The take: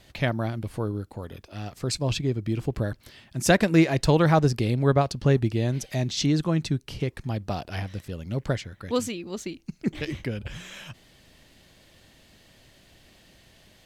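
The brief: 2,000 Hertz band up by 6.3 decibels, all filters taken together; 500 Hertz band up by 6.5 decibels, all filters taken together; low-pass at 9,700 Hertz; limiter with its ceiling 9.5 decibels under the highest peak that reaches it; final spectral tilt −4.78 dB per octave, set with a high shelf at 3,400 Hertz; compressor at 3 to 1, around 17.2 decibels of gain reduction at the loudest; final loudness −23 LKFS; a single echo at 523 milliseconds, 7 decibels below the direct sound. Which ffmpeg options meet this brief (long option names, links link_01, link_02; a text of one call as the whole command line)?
ffmpeg -i in.wav -af "lowpass=9700,equalizer=frequency=500:width_type=o:gain=7.5,equalizer=frequency=2000:width_type=o:gain=5,highshelf=frequency=3400:gain=8.5,acompressor=threshold=-33dB:ratio=3,alimiter=level_in=2dB:limit=-24dB:level=0:latency=1,volume=-2dB,aecho=1:1:523:0.447,volume=13dB" out.wav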